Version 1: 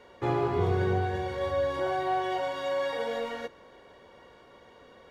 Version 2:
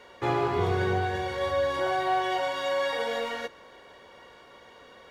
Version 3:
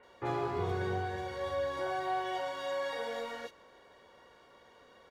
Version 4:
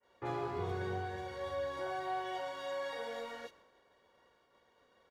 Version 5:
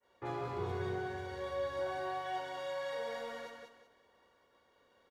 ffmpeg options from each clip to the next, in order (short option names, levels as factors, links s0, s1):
-af "tiltshelf=f=730:g=-4,volume=1.33"
-filter_complex "[0:a]acrossover=split=2600[s0][s1];[s1]adelay=30[s2];[s0][s2]amix=inputs=2:normalize=0,volume=0.422"
-af "agate=range=0.0224:threshold=0.00224:ratio=3:detection=peak,volume=0.631"
-af "aecho=1:1:186|372|558|744:0.596|0.173|0.0501|0.0145,volume=0.841"